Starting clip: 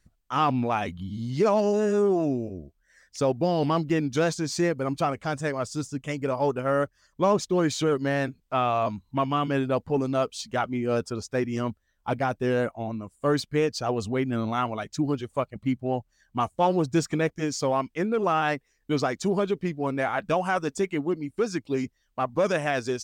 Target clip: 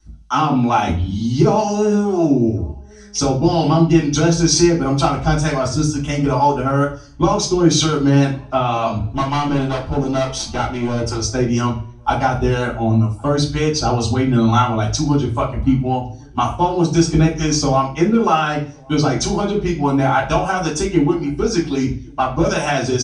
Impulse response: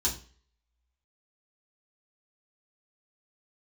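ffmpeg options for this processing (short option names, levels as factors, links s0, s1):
-filter_complex "[0:a]asubboost=boost=5:cutoff=84,acompressor=threshold=0.0562:ratio=6,asettb=1/sr,asplit=3[s0][s1][s2];[s0]atrim=end=8.964[s3];[s1]atrim=start=8.96:end=11.22,asetpts=PTS-STARTPTS,afade=t=in:d=0.004:c=qsin,afade=t=out:st=2.256:d=0.004:c=qsin,aeval=exprs='clip(val(0),-1,0.00944)':c=same[s4];[s2]atrim=start=11.216[s5];[s3][s4]acrossfade=d=0.004:c1=hsin:c2=qsin[s6];[s6][s5]acrossfade=d=0.004:c1=qsin:c2=hsin,acrossover=split=650[s7][s8];[s7]aeval=exprs='val(0)*(1-0.5/2+0.5/2*cos(2*PI*2.1*n/s))':c=same[s9];[s8]aeval=exprs='val(0)*(1-0.5/2-0.5/2*cos(2*PI*2.1*n/s))':c=same[s10];[s9][s10]amix=inputs=2:normalize=0,asplit=2[s11][s12];[s12]adelay=1108,volume=0.0398,highshelf=f=4000:g=-24.9[s13];[s11][s13]amix=inputs=2:normalize=0[s14];[1:a]atrim=start_sample=2205,asetrate=38808,aresample=44100[s15];[s14][s15]afir=irnorm=-1:irlink=0,aresample=22050,aresample=44100,volume=2.24"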